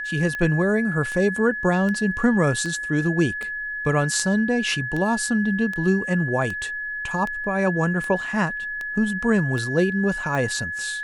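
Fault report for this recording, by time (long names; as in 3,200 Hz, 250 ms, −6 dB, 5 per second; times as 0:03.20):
scratch tick 78 rpm −17 dBFS
whistle 1,700 Hz −27 dBFS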